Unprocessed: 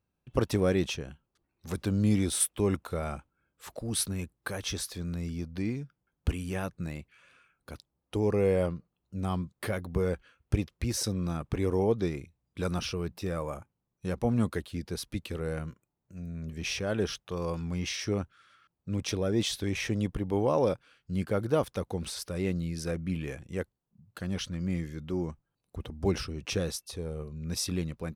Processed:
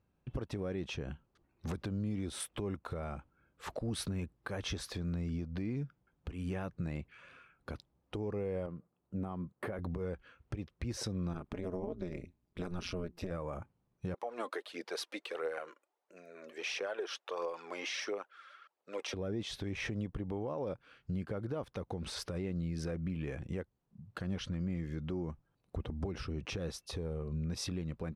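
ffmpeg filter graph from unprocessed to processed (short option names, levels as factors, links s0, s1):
-filter_complex "[0:a]asettb=1/sr,asplit=3[s0][s1][s2];[s0]atrim=end=8.664[s3];[s1]atrim=start=8.66:end=9.79,asetpts=PTS-STARTPTS,afade=t=in:d=0.004:c=qsin,afade=t=out:st=1.126:d=0.004:c=qsin,highpass=f=230:p=1,equalizer=f=4800:w=0.64:g=-14.5[s4];[s2]atrim=start=9.786[s5];[s3][s4]acrossfade=d=0.004:c1=hsin:c2=qsin[s6];[s6][s5]acrossfade=d=0.004:c1=qsin:c2=hsin,asettb=1/sr,asplit=3[s7][s8][s9];[s7]atrim=end=11.334[s10];[s8]atrim=start=11.33:end=13.31,asetpts=PTS-STARTPTS,afade=t=in:d=0.004:c=qsin,afade=t=out:st=1.976:d=0.004:c=qsin,highshelf=f=9900:g=6,aecho=1:1:4.8:0.34,atrim=end_sample=87318,tremolo=f=180:d=1[s11];[s9]atrim=start=13.306[s12];[s10][s11]acrossfade=d=0.004:c1=hsin:c2=qsin[s13];[s13][s12]acrossfade=d=0.004:c1=qsin:c2=hsin,asettb=1/sr,asplit=3[s14][s15][s16];[s14]atrim=end=14.144[s17];[s15]atrim=start=14.14:end=19.14,asetpts=PTS-STARTPTS,afade=t=in:d=0.004:c=qsin,afade=t=out:st=4.996:d=0.004:c=qsin,highpass=f=460:w=0.5412,highpass=f=460:w=1.3066,aphaser=in_gain=1:out_gain=1:delay=3.9:decay=0.47:speed=1.5:type=triangular[s18];[s16]atrim=start=19.136[s19];[s17][s18]acrossfade=d=0.004:c1=hsin:c2=qsin[s20];[s20][s19]acrossfade=d=0.004:c1=qsin:c2=hsin,aemphasis=mode=reproduction:type=75fm,acompressor=threshold=0.0158:ratio=6,alimiter=level_in=2.99:limit=0.0631:level=0:latency=1:release=126,volume=0.335,volume=1.78"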